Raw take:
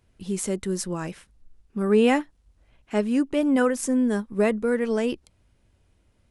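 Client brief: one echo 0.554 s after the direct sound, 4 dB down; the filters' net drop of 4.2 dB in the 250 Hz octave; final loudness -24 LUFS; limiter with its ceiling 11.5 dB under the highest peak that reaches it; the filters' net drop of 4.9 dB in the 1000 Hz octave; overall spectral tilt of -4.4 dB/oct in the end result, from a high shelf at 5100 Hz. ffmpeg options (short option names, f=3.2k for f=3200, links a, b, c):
-af "equalizer=f=250:t=o:g=-4.5,equalizer=f=1k:t=o:g=-7,highshelf=f=5.1k:g=7.5,alimiter=limit=-19.5dB:level=0:latency=1,aecho=1:1:554:0.631,volume=5.5dB"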